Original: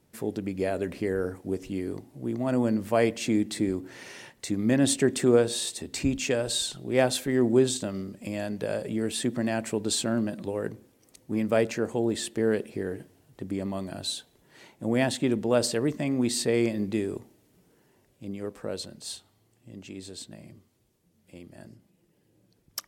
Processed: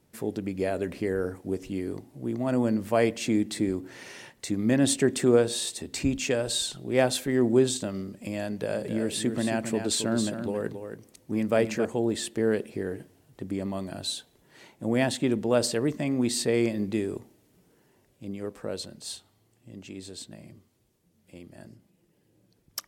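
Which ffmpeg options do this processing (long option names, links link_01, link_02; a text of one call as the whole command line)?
ffmpeg -i in.wav -filter_complex "[0:a]asettb=1/sr,asplit=3[link_01][link_02][link_03];[link_01]atrim=end=8.484[link_04];[link_02]atrim=start=8.48:end=11.85,asetpts=PTS-STARTPTS,afade=type=in:duration=0.004:curve=qsin,afade=type=out:start_time=3.366:duration=0.004:curve=qsin,aecho=1:1:272:0.398,atrim=end_sample=148617[link_05];[link_03]atrim=start=11.846[link_06];[link_04][link_05]acrossfade=duration=0.004:curve1=hsin:curve2=qsin[link_07];[link_07][link_06]acrossfade=duration=0.004:curve1=qsin:curve2=hsin" out.wav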